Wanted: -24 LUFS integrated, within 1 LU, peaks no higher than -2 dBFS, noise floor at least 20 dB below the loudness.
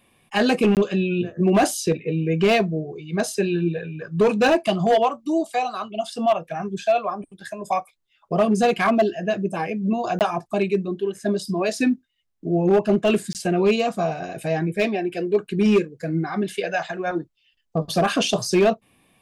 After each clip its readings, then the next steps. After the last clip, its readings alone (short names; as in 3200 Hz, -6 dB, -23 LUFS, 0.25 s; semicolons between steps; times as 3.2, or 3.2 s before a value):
clipped 0.8%; flat tops at -11.5 dBFS; dropouts 3; longest dropout 18 ms; loudness -22.5 LUFS; peak -11.5 dBFS; loudness target -24.0 LUFS
-> clip repair -11.5 dBFS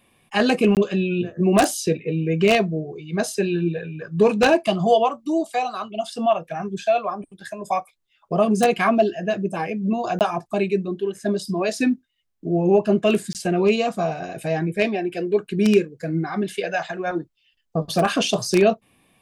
clipped 0.0%; dropouts 3; longest dropout 18 ms
-> interpolate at 0.75/10.19/13.33, 18 ms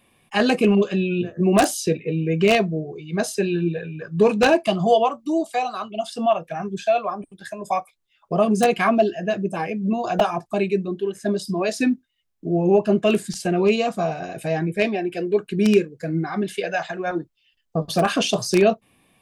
dropouts 0; loudness -22.0 LUFS; peak -2.5 dBFS; loudness target -24.0 LUFS
-> gain -2 dB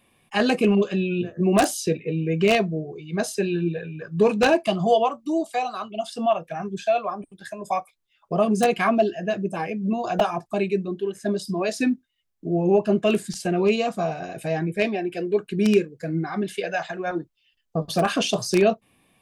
loudness -24.0 LUFS; peak -4.5 dBFS; noise floor -71 dBFS